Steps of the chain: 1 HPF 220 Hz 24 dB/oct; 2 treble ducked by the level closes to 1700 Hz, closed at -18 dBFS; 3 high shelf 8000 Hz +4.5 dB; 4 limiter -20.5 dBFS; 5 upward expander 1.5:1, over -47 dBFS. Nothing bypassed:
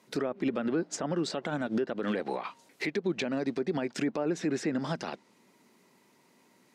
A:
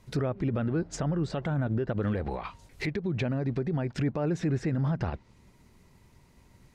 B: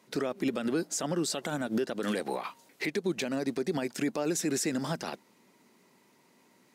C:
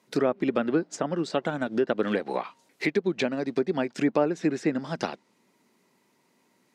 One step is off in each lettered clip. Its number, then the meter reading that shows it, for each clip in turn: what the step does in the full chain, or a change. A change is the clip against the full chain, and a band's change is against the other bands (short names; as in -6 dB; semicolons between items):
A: 1, 125 Hz band +13.5 dB; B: 2, 8 kHz band +8.5 dB; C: 4, mean gain reduction 2.0 dB